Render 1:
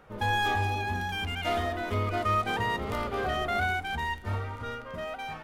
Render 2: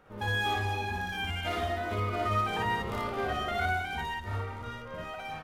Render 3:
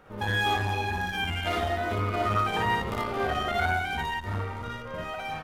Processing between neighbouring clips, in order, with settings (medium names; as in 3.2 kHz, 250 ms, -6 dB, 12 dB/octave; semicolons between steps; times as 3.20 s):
loudspeakers at several distances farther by 20 m 0 dB, 81 m -11 dB; trim -5 dB
transformer saturation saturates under 350 Hz; trim +5 dB